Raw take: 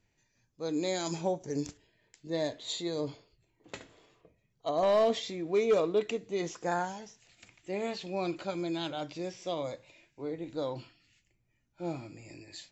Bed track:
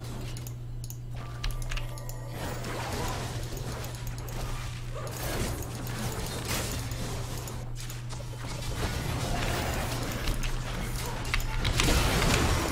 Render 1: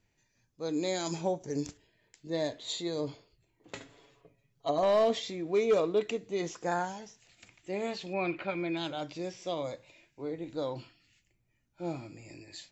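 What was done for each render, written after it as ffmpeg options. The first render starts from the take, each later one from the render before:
ffmpeg -i in.wav -filter_complex "[0:a]asettb=1/sr,asplit=3[link_01][link_02][link_03];[link_01]atrim=end=3.754[link_04];[link_02]atrim=start=3.75:end=4.79,asetpts=PTS-STARTPTS,afade=type=in:duration=0.004:curve=qsin,afade=type=out:start_time=1.036:duration=0.004:curve=qsin,aecho=1:1:7.2:0.65,atrim=end_sample=45864[link_05];[link_03]atrim=start=4.786[link_06];[link_04][link_05]acrossfade=duration=0.004:curve1=hsin:curve2=qsin[link_07];[link_07][link_06]acrossfade=duration=0.004:curve1=qsin:curve2=hsin,asettb=1/sr,asplit=3[link_08][link_09][link_10];[link_08]atrim=end=8.134[link_11];[link_09]atrim=start=8.13:end=8.77,asetpts=PTS-STARTPTS,afade=type=in:duration=0.004:curve=qsin,afade=type=out:start_time=0.636:duration=0.004:curve=qsin,lowpass=frequency=2300:width_type=q:width=3[link_12];[link_10]atrim=start=8.766[link_13];[link_11][link_12]acrossfade=duration=0.004:curve1=hsin:curve2=qsin[link_14];[link_14][link_13]acrossfade=duration=0.004:curve1=qsin:curve2=hsin" out.wav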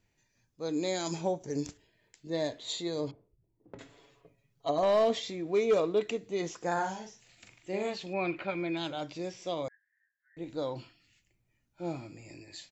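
ffmpeg -i in.wav -filter_complex "[0:a]asettb=1/sr,asplit=3[link_01][link_02][link_03];[link_01]atrim=end=3.114[link_04];[link_02]atrim=start=3.11:end=3.79,asetpts=PTS-STARTPTS,afade=type=in:duration=0.004:curve=qsin,afade=type=out:start_time=0.676:duration=0.004:curve=qsin,adynamicsmooth=sensitivity=1:basefreq=560[link_05];[link_03]atrim=start=3.786[link_06];[link_04][link_05]acrossfade=duration=0.004:curve1=hsin:curve2=qsin[link_07];[link_07][link_06]acrossfade=duration=0.004:curve1=qsin:curve2=hsin,asplit=3[link_08][link_09][link_10];[link_08]afade=type=out:start_time=6.76:duration=0.02[link_11];[link_09]asplit=2[link_12][link_13];[link_13]adelay=42,volume=-5dB[link_14];[link_12][link_14]amix=inputs=2:normalize=0,afade=type=in:start_time=6.76:duration=0.02,afade=type=out:start_time=7.89:duration=0.02[link_15];[link_10]afade=type=in:start_time=7.89:duration=0.02[link_16];[link_11][link_15][link_16]amix=inputs=3:normalize=0,asettb=1/sr,asplit=3[link_17][link_18][link_19];[link_17]atrim=end=9.684[link_20];[link_18]atrim=start=9.68:end=10.37,asetpts=PTS-STARTPTS,afade=type=in:duration=0.004:curve=qsin,afade=type=out:start_time=0.686:duration=0.004:curve=qsin,asuperpass=centerf=1700:order=8:qfactor=5[link_21];[link_19]atrim=start=10.366[link_22];[link_20][link_21]acrossfade=duration=0.004:curve1=hsin:curve2=qsin[link_23];[link_23][link_22]acrossfade=duration=0.004:curve1=qsin:curve2=hsin" out.wav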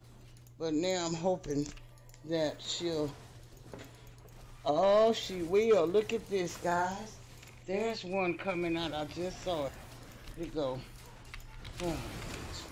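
ffmpeg -i in.wav -i bed.wav -filter_complex "[1:a]volume=-18dB[link_01];[0:a][link_01]amix=inputs=2:normalize=0" out.wav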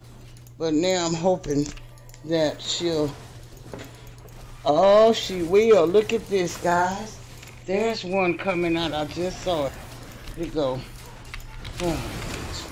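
ffmpeg -i in.wav -af "volume=10dB" out.wav

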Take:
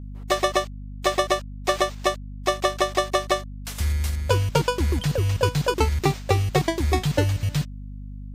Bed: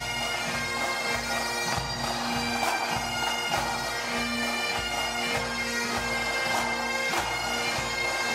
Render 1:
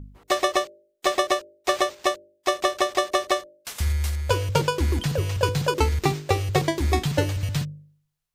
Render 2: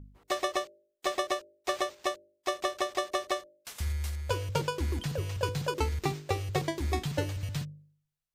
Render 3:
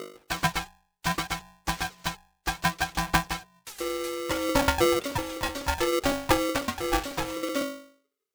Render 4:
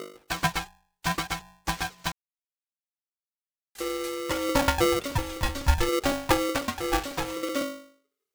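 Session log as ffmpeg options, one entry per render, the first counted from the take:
ffmpeg -i in.wav -af "bandreject=frequency=50:width_type=h:width=4,bandreject=frequency=100:width_type=h:width=4,bandreject=frequency=150:width_type=h:width=4,bandreject=frequency=200:width_type=h:width=4,bandreject=frequency=250:width_type=h:width=4,bandreject=frequency=300:width_type=h:width=4,bandreject=frequency=350:width_type=h:width=4,bandreject=frequency=400:width_type=h:width=4,bandreject=frequency=450:width_type=h:width=4,bandreject=frequency=500:width_type=h:width=4,bandreject=frequency=550:width_type=h:width=4,bandreject=frequency=600:width_type=h:width=4" out.wav
ffmpeg -i in.wav -af "volume=-8.5dB" out.wav
ffmpeg -i in.wav -af "aphaser=in_gain=1:out_gain=1:delay=2.7:decay=0.65:speed=0.64:type=sinusoidal,aeval=exprs='val(0)*sgn(sin(2*PI*420*n/s))':channel_layout=same" out.wav
ffmpeg -i in.wav -filter_complex "[0:a]asettb=1/sr,asplit=3[link_01][link_02][link_03];[link_01]atrim=end=4.664[link_04];[link_02]atrim=start=4.66:end=5.89,asetpts=PTS-STARTPTS,afade=type=in:duration=0.004:curve=qsin,afade=type=out:start_time=1.226:duration=0.004:curve=qsin,asubboost=boost=10:cutoff=190[link_05];[link_03]atrim=start=5.886[link_06];[link_04][link_05]acrossfade=duration=0.004:curve1=hsin:curve2=qsin[link_07];[link_07][link_06]acrossfade=duration=0.004:curve1=qsin:curve2=hsin,asplit=3[link_08][link_09][link_10];[link_08]atrim=end=2.12,asetpts=PTS-STARTPTS,afade=type=out:start_time=2.116:duration=0.004:curve=hsin[link_11];[link_09]atrim=start=2.12:end=3.75,asetpts=PTS-STARTPTS,volume=0[link_12];[link_10]atrim=start=3.75,asetpts=PTS-STARTPTS,afade=type=in:duration=0.004:curve=hsin[link_13];[link_11][link_12][link_13]concat=n=3:v=0:a=1" out.wav

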